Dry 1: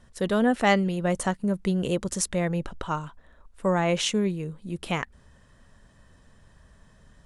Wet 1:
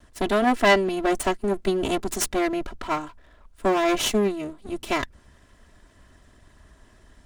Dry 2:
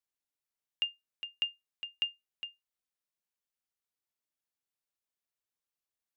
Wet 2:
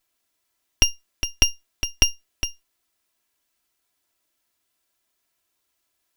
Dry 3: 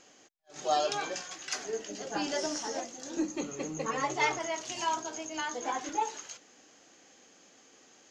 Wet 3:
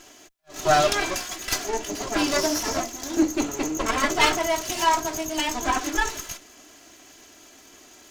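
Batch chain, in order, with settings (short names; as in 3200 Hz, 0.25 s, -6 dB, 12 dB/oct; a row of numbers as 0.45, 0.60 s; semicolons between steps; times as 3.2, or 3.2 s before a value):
minimum comb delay 3 ms; match loudness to -24 LUFS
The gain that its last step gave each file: +3.5, +18.5, +11.0 dB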